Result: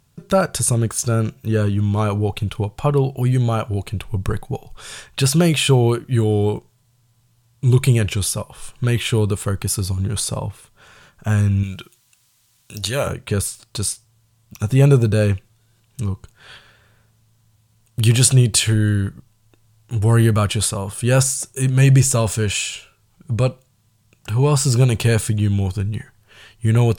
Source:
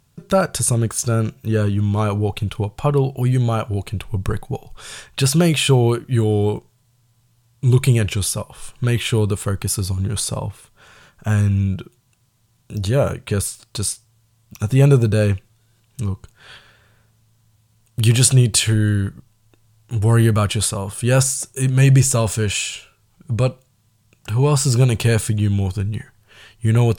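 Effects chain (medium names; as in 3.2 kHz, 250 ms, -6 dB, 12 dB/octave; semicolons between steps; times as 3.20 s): 11.63–13.07 s: tilt shelf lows -8.5 dB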